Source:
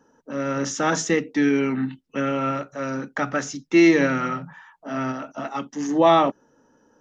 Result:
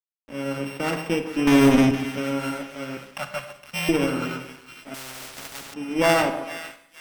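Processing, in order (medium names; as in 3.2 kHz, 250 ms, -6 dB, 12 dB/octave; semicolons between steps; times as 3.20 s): sorted samples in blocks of 16 samples; 2.97–3.89 s: elliptic band-stop 200–550 Hz; spectral gate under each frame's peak -30 dB strong; 1.47–1.91 s: waveshaping leveller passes 5; two-band feedback delay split 1.3 kHz, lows 137 ms, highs 464 ms, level -10 dB; crossover distortion -37.5 dBFS; treble shelf 3.5 kHz -8.5 dB; Schroeder reverb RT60 0.71 s, combs from 32 ms, DRR 9.5 dB; Chebyshev shaper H 2 -9 dB, 3 -19 dB, 5 -25 dB, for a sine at -4 dBFS; 4.94–5.74 s: spectrum-flattening compressor 4:1; trim -1.5 dB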